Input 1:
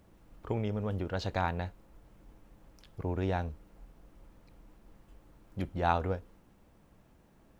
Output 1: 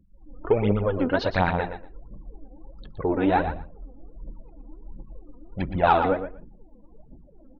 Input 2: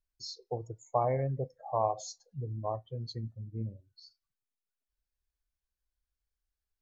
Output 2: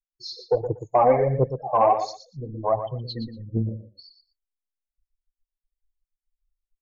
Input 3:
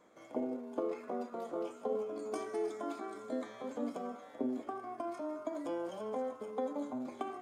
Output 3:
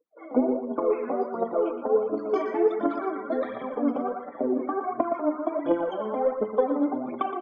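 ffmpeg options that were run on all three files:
-filter_complex "[0:a]aemphasis=mode=reproduction:type=cd,dynaudnorm=f=110:g=3:m=2.82,aphaser=in_gain=1:out_gain=1:delay=4.2:decay=0.68:speed=1.4:type=triangular,asplit=2[s0][s1];[s1]acontrast=71,volume=1.26[s2];[s0][s2]amix=inputs=2:normalize=0,equalizer=f=84:t=o:w=1:g=-10.5,afftdn=nr=34:nf=-35,lowpass=f=5100:w=0.5412,lowpass=f=5100:w=1.3066,asplit=2[s3][s4];[s4]aecho=0:1:118|236:0.335|0.0569[s5];[s3][s5]amix=inputs=2:normalize=0,alimiter=level_in=0.631:limit=0.891:release=50:level=0:latency=1,volume=0.473"

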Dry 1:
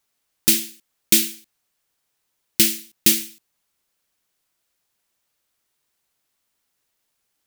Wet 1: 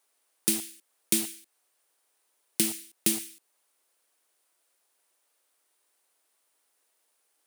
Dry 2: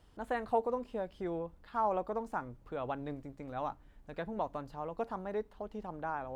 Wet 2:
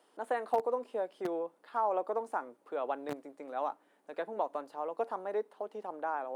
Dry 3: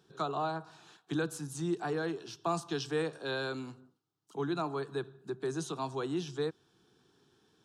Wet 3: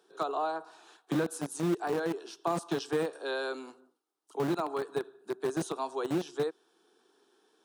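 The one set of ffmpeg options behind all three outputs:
-filter_complex "[0:a]acrossover=split=320[s0][s1];[s0]acrusher=bits=5:mix=0:aa=0.000001[s2];[s1]equalizer=f=9400:t=o:w=0.36:g=9[s3];[s2][s3]amix=inputs=2:normalize=0,acompressor=threshold=0.0282:ratio=2,highpass=150,tiltshelf=f=1100:g=4,volume=1.33"

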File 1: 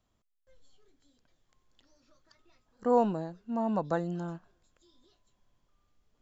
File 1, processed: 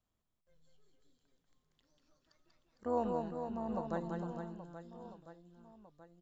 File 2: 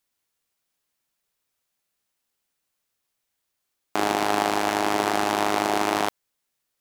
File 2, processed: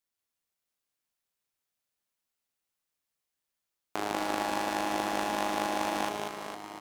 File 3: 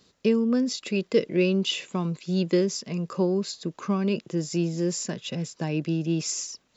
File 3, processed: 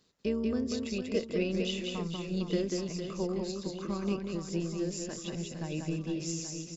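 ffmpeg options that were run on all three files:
-af "tremolo=f=160:d=0.462,aecho=1:1:190|456|828.4|1350|2080:0.631|0.398|0.251|0.158|0.1,volume=0.422"

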